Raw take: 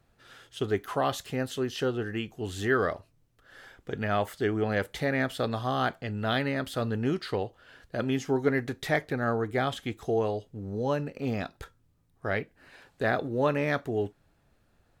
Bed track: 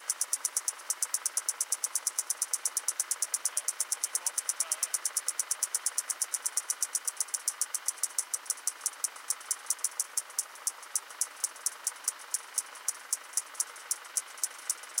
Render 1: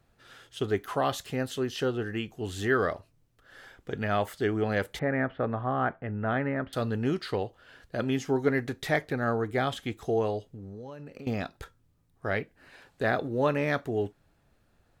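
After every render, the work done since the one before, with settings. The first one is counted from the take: 4.99–6.73 s: low-pass 2 kHz 24 dB/octave; 10.50–11.27 s: compression 20:1, threshold -38 dBFS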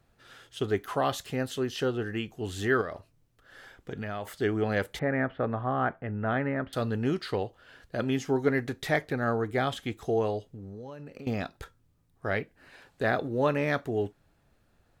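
2.81–4.27 s: compression, threshold -31 dBFS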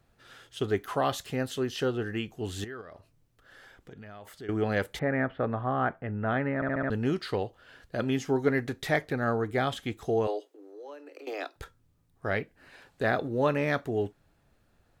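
2.64–4.49 s: compression 2:1, threshold -51 dBFS; 6.55 s: stutter in place 0.07 s, 5 plays; 10.27–11.56 s: steep high-pass 290 Hz 96 dB/octave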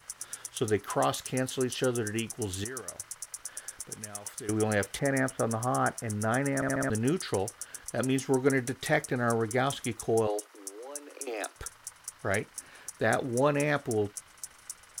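add bed track -9.5 dB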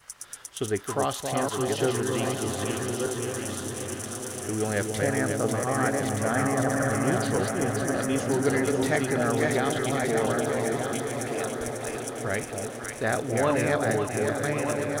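backward echo that repeats 613 ms, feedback 55%, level -3 dB; on a send: echo whose repeats swap between lows and highs 272 ms, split 890 Hz, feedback 81%, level -4.5 dB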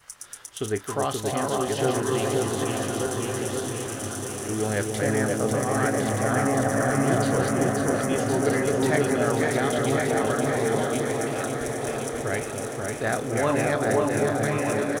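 doubling 28 ms -13 dB; echo whose repeats swap between lows and highs 529 ms, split 1.2 kHz, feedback 59%, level -2 dB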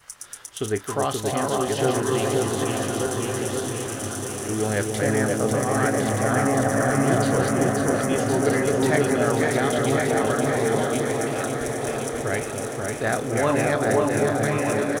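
trim +2 dB

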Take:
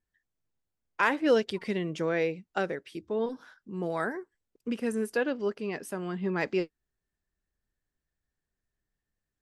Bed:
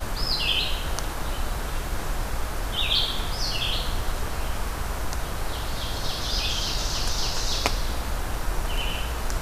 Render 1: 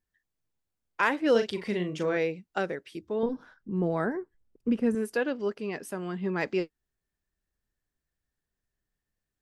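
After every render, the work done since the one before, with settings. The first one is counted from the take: 1.31–2.17 s: doubling 39 ms -7 dB; 3.23–4.95 s: tilt EQ -3 dB/octave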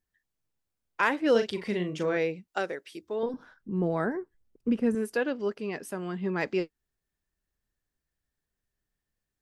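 2.48–3.34 s: tone controls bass -11 dB, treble +4 dB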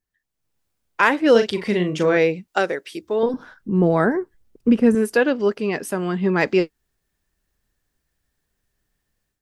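level rider gain up to 11 dB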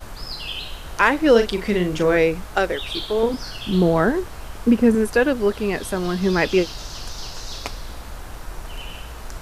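add bed -6.5 dB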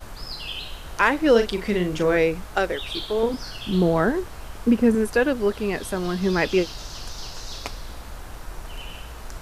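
trim -2.5 dB

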